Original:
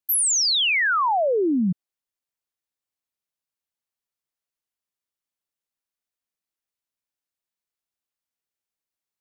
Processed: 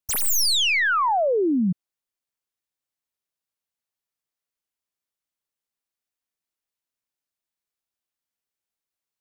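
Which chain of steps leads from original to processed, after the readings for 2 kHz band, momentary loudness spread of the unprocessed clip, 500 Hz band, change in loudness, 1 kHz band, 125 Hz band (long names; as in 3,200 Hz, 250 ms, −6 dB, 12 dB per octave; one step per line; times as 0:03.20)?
0.0 dB, 8 LU, 0.0 dB, −0.5 dB, 0.0 dB, 0.0 dB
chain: stylus tracing distortion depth 0.05 ms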